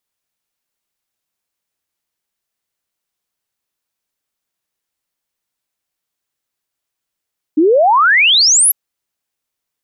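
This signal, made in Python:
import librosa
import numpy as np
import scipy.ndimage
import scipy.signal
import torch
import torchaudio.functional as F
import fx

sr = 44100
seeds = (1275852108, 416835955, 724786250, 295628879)

y = fx.ess(sr, length_s=1.15, from_hz=290.0, to_hz=12000.0, level_db=-7.0)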